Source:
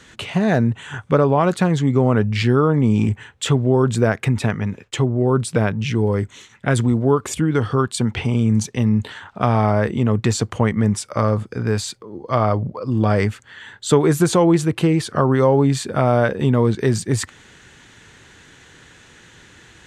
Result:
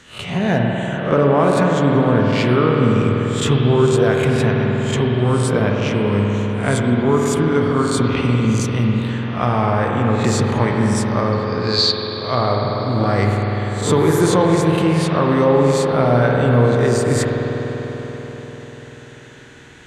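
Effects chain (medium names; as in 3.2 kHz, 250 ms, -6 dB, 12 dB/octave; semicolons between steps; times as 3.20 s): reverse spectral sustain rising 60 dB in 0.38 s; 11.32–12.21 s: resonant low-pass 4.4 kHz, resonance Q 11; reverberation RT60 5.1 s, pre-delay 49 ms, DRR -1 dB; trim -2 dB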